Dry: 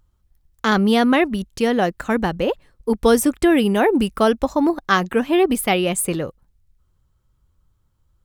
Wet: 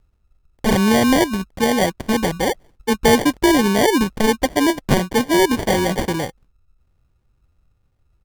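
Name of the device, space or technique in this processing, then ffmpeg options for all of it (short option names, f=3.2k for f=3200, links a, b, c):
crushed at another speed: -af "asetrate=35280,aresample=44100,acrusher=samples=42:mix=1:aa=0.000001,asetrate=55125,aresample=44100,volume=1dB"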